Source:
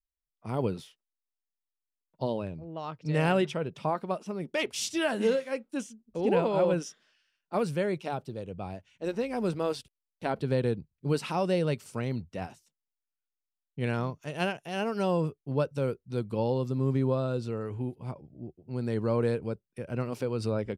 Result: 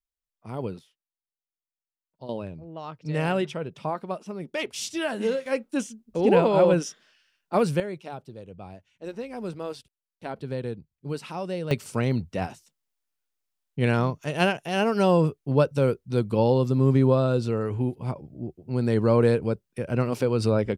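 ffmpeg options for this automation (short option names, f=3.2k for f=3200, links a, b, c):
-af "asetnsamples=n=441:p=0,asendcmd='0.79 volume volume -10dB;2.29 volume volume 0dB;5.46 volume volume 6.5dB;7.8 volume volume -4dB;11.71 volume volume 7.5dB',volume=-2.5dB"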